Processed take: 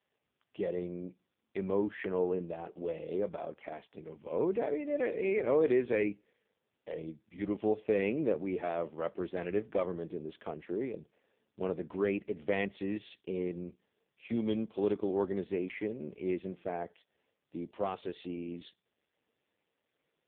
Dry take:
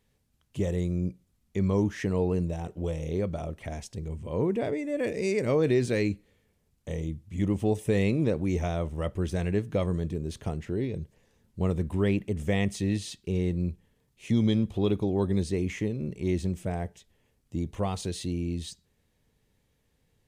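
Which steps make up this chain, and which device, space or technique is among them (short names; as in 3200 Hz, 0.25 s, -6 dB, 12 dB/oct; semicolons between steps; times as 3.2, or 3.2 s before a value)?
14.73–15.65 dynamic EQ 1600 Hz, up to +4 dB, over -53 dBFS, Q 1.8; telephone (BPF 350–3600 Hz; AMR-NB 5.15 kbps 8000 Hz)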